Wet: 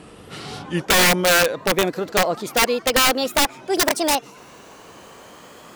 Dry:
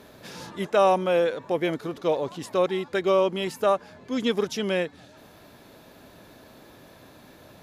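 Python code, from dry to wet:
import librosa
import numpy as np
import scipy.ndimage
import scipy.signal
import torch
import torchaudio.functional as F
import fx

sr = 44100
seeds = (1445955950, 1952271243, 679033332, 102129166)

y = fx.speed_glide(x, sr, from_pct=73, to_pct=192)
y = (np.mod(10.0 ** (17.0 / 20.0) * y + 1.0, 2.0) - 1.0) / 10.0 ** (17.0 / 20.0)
y = F.gain(torch.from_numpy(y), 6.5).numpy()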